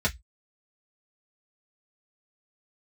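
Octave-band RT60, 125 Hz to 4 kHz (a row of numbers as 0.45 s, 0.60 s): 0.25 s, 0.10 s, 0.10 s, 0.10 s, 0.15 s, 0.15 s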